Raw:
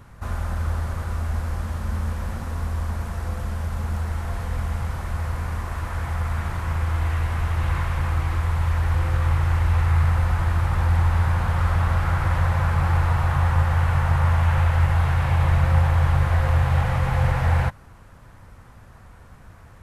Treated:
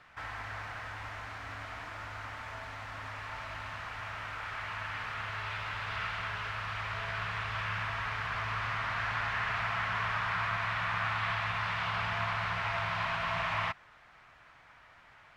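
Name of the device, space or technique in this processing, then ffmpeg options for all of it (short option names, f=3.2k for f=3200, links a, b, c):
nightcore: -filter_complex "[0:a]acrossover=split=460 4500:gain=0.0891 1 0.0631[a][b][c];[a][b][c]amix=inputs=3:normalize=0,asetrate=56889,aresample=44100,volume=-3dB"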